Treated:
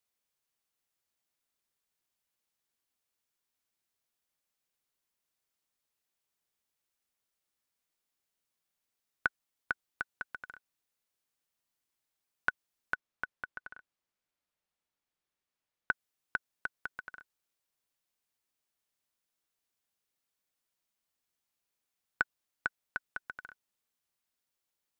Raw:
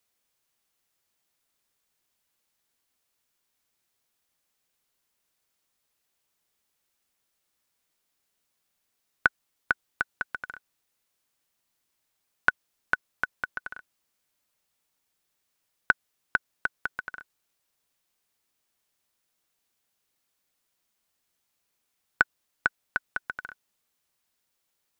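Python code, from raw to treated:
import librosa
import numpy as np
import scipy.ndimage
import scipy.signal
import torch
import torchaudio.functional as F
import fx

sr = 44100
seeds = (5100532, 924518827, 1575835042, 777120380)

y = fx.high_shelf(x, sr, hz=5600.0, db=-11.5, at=(12.94, 15.91))
y = y * librosa.db_to_amplitude(-8.5)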